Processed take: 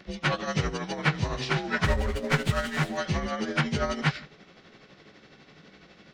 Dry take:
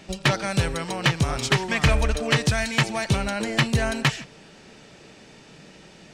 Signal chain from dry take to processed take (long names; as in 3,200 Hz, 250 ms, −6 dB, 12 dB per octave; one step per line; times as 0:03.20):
partials spread apart or drawn together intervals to 89%
amplitude tremolo 12 Hz, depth 52%
0:01.84–0:02.97: windowed peak hold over 5 samples